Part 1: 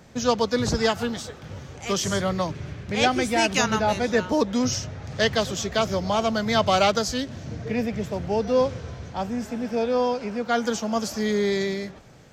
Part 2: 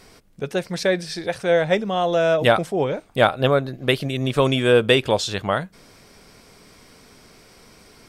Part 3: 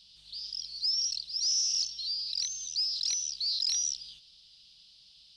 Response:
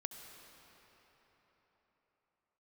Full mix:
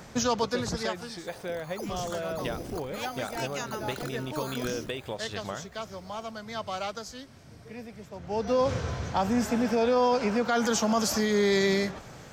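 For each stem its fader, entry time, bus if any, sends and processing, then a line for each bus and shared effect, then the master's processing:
+3.0 dB, 0.00 s, bus A, no send, peaking EQ 1.1 kHz +5 dB 1.4 oct; auto duck -20 dB, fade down 1.10 s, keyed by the second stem
-11.0 dB, 0.00 s, no bus, no send, compression, threshold -20 dBFS, peak gain reduction 10 dB
-9.0 dB, 0.95 s, bus A, no send, sample-and-hold 8×
bus A: 0.0 dB, treble shelf 5 kHz +5.5 dB; peak limiter -17 dBFS, peak gain reduction 11 dB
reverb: none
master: none

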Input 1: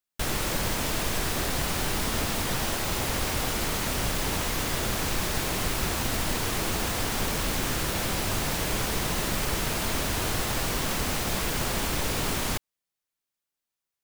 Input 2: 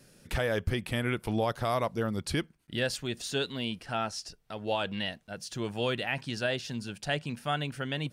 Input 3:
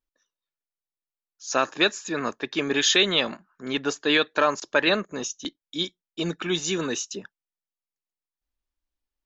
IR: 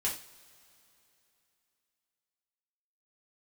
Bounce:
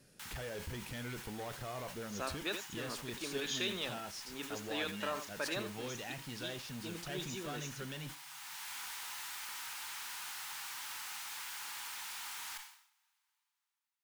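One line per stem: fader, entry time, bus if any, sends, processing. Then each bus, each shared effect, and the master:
-8.5 dB, 0.00 s, bus A, send -19 dB, no echo send, steep high-pass 830 Hz 72 dB/octave; band-stop 1.1 kHz, Q 12; auto duck -20 dB, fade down 0.60 s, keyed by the second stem
-5.5 dB, 0.00 s, bus A, send -21 dB, no echo send, none
-18.0 dB, 0.65 s, no bus, no send, echo send -11.5 dB, none
bus A: 0.0 dB, valve stage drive 38 dB, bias 0.4; compression, threshold -43 dBFS, peak gain reduction 4.5 dB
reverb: on, pre-delay 3 ms
echo: delay 83 ms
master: decay stretcher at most 90 dB/s

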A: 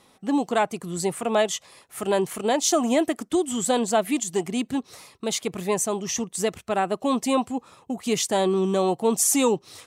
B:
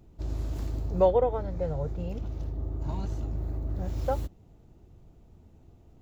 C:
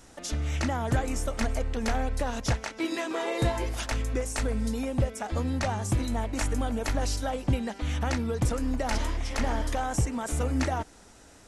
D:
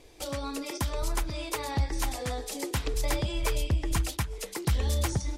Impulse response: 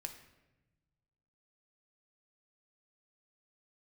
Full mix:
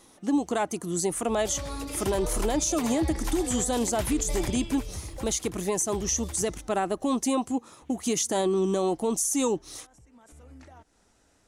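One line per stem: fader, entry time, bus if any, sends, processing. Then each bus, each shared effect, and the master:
-1.5 dB, 0.00 s, no send, no echo send, graphic EQ with 31 bands 315 Hz +9 dB, 2.5 kHz -3 dB, 6.3 kHz +10 dB, 10 kHz +9 dB; compression, threshold -19 dBFS, peak gain reduction 8.5 dB
-4.0 dB, 1.10 s, no send, no echo send, compression 4:1, threshold -37 dBFS, peak gain reduction 17 dB
-11.5 dB, 0.00 s, no send, no echo send, compression 3:1, threshold -35 dBFS, peak gain reduction 11 dB; peak limiter -29.5 dBFS, peak gain reduction 9 dB; auto duck -9 dB, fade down 0.30 s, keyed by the first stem
4.56 s -3.5 dB -> 4.78 s -14 dB, 1.25 s, no send, echo send -3.5 dB, none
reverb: none
echo: delay 80 ms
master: peak limiter -17 dBFS, peak gain reduction 6.5 dB

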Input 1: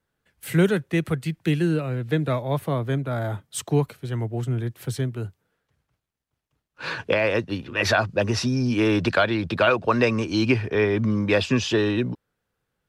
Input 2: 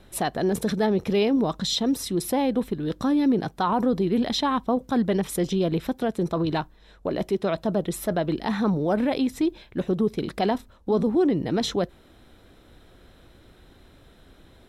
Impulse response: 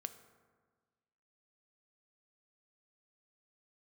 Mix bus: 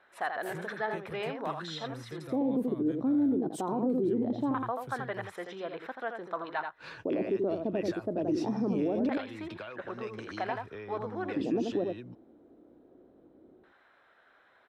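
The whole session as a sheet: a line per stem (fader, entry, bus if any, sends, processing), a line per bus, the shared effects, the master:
-14.5 dB, 0.00 s, no send, no echo send, compression, threshold -26 dBFS, peak gain reduction 12.5 dB
-2.5 dB, 0.00 s, no send, echo send -6.5 dB, LFO band-pass square 0.22 Hz 300–1600 Hz; peaking EQ 660 Hz +9 dB 2 oct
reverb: none
echo: delay 83 ms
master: peak limiter -21.5 dBFS, peak gain reduction 9 dB

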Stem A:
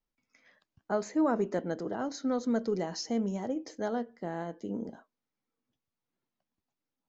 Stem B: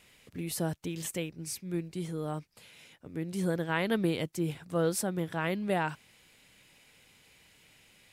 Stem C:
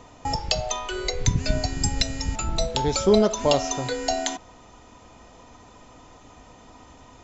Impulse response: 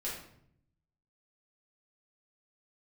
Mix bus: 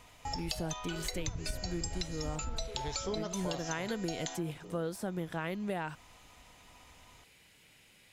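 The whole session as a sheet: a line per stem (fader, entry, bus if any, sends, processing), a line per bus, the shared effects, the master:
-4.5 dB, 0.00 s, no send, high-pass 530 Hz; peak limiter -36 dBFS, peak gain reduction 15 dB
-1.0 dB, 0.00 s, no send, de-esser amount 70%
-7.5 dB, 0.00 s, no send, peaking EQ 290 Hz -10.5 dB 2.3 oct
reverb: none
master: compression, threshold -32 dBFS, peak gain reduction 9 dB

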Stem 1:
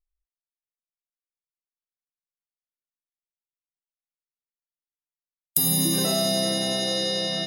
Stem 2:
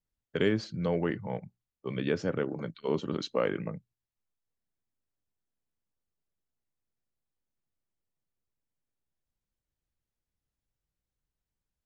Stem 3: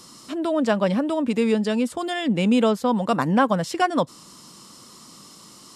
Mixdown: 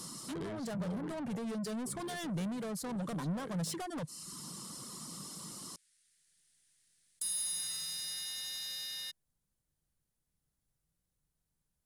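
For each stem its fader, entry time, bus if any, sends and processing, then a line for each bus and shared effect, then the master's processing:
-13.5 dB, 1.65 s, no bus, no send, waveshaping leveller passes 1; elliptic band-pass 1.7–9.5 kHz; level flattener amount 50%
+2.5 dB, 0.00 s, bus A, no send, auto duck -15 dB, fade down 1.80 s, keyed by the third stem
-1.0 dB, 0.00 s, bus A, no send, reverb removal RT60 0.53 s; compression 4:1, threshold -23 dBFS, peak gain reduction 8.5 dB; saturation -26 dBFS, distortion -11 dB
bus A: 0.0 dB, compression 5:1, threshold -32 dBFS, peak gain reduction 10 dB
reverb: none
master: saturation -38 dBFS, distortion -11 dB; fifteen-band graphic EQ 160 Hz +8 dB, 2.5 kHz -4 dB, 10 kHz +9 dB

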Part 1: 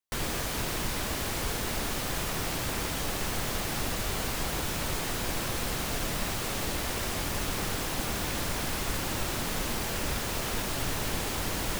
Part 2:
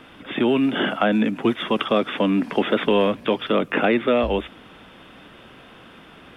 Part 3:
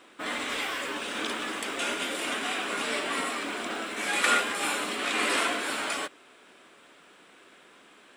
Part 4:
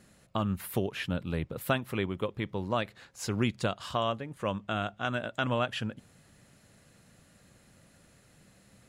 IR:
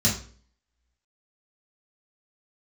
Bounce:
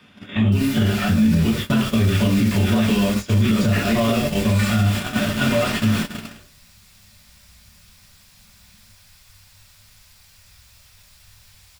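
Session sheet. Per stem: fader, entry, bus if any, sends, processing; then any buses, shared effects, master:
-4.5 dB, 0.40 s, send -17 dB, amplifier tone stack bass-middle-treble 10-0-10
-14.0 dB, 0.00 s, send -10 dB, treble shelf 2.4 kHz +12 dB; de-hum 85.7 Hz, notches 3; three bands compressed up and down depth 100%; auto duck -14 dB, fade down 1.70 s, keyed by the fourth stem
-14.0 dB, 0.35 s, send -11.5 dB, comb 3.4 ms, depth 84%
-5.5 dB, 0.00 s, send -6.5 dB, none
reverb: on, RT60 0.45 s, pre-delay 3 ms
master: gate -26 dBFS, range -20 dB; level rider gain up to 8 dB; peak limiter -9.5 dBFS, peak gain reduction 7 dB

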